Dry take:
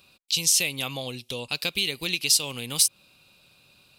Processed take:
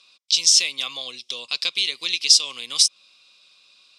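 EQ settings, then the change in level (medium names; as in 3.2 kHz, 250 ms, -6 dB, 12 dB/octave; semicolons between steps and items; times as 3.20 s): Butterworth band-stop 890 Hz, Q 7.8; cabinet simulation 320–7900 Hz, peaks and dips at 1.1 kHz +10 dB, 2.1 kHz +5 dB, 3.5 kHz +7 dB, 5.3 kHz +9 dB; treble shelf 2.8 kHz +11.5 dB; -7.5 dB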